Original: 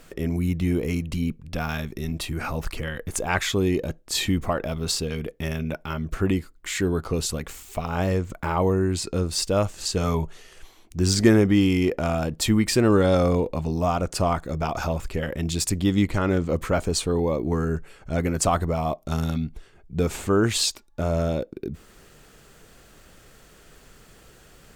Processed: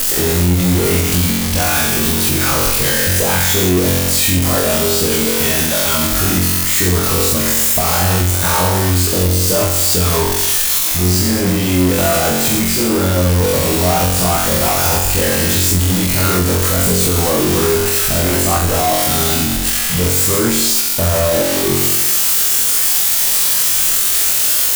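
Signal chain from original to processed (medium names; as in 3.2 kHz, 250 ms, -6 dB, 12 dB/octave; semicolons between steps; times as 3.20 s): zero-crossing glitches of -12.5 dBFS; compressor with a negative ratio -26 dBFS, ratio -1; flutter echo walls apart 3.8 m, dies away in 0.93 s; power-law waveshaper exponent 0.5; loudness maximiser +6 dB; trim -6 dB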